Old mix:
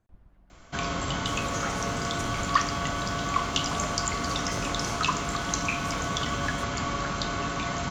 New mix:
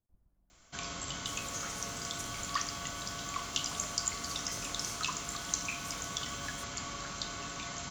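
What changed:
speech: add parametric band 3,000 Hz −14.5 dB 2.7 octaves
master: add first-order pre-emphasis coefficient 0.8

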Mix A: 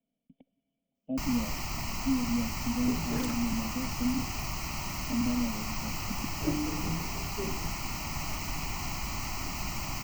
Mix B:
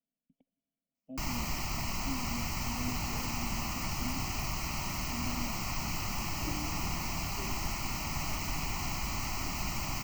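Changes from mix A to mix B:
speech −11.5 dB
second sound −11.0 dB

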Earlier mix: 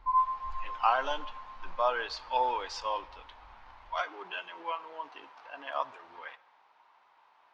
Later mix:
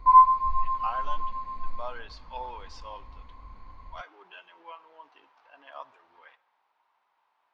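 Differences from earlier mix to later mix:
speech −9.5 dB
background +11.5 dB

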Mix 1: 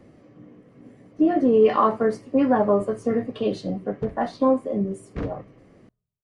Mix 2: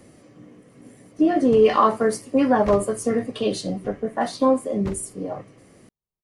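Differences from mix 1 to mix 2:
background: entry −2.50 s
master: remove head-to-tape spacing loss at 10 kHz 22 dB

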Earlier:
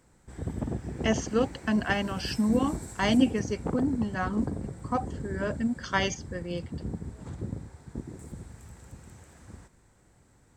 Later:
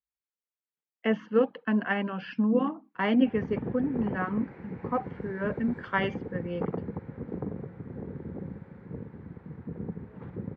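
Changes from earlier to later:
background: entry +2.95 s
master: add loudspeaker in its box 130–2,500 Hz, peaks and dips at 180 Hz +3 dB, 300 Hz −3 dB, 470 Hz +5 dB, 660 Hz −5 dB

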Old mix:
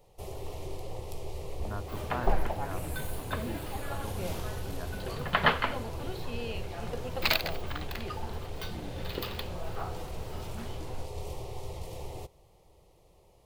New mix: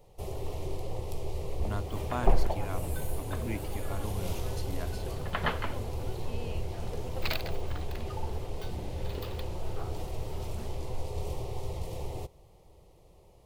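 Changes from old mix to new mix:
speech: remove linear-phase brick-wall band-stop 1,900–9,800 Hz
second sound −8.0 dB
master: add low-shelf EQ 500 Hz +4.5 dB

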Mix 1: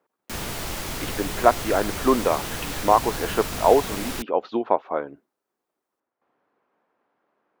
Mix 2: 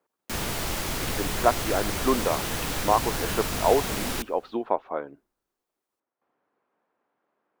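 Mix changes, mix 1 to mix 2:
speech −4.5 dB
reverb: on, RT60 2.0 s

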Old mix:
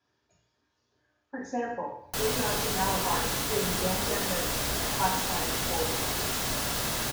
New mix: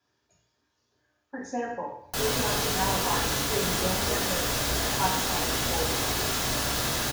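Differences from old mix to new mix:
speech: remove high-frequency loss of the air 57 metres
background: send +7.5 dB

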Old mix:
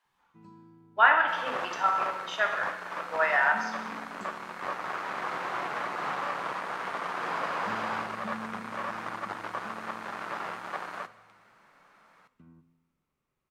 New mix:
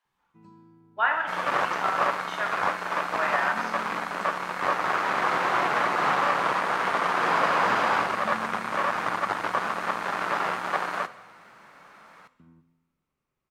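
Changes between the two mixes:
speech −4.0 dB
second sound +9.0 dB

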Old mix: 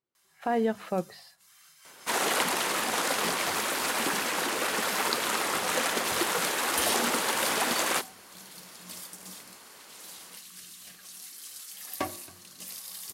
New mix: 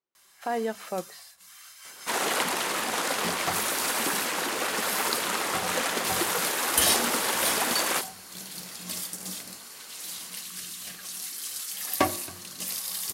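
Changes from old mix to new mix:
speech: add high-pass filter 380 Hz 6 dB per octave
first sound +8.5 dB

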